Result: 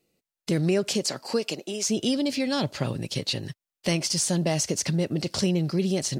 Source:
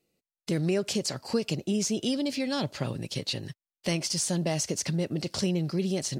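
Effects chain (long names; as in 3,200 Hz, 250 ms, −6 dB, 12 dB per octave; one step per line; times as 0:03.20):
0:00.88–0:01.87: high-pass filter 150 Hz → 530 Hz 12 dB per octave
level +3.5 dB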